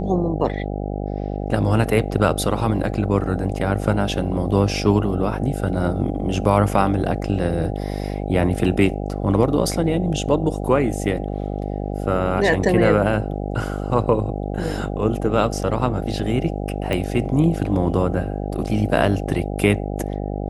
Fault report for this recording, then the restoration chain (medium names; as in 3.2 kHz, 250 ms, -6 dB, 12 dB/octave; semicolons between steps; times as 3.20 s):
buzz 50 Hz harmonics 16 -26 dBFS
16.93 s: pop -11 dBFS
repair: de-click; de-hum 50 Hz, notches 16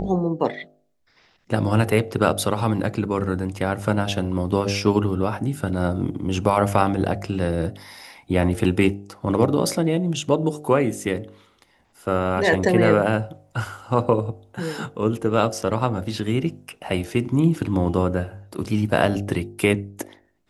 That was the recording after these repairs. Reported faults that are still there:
nothing left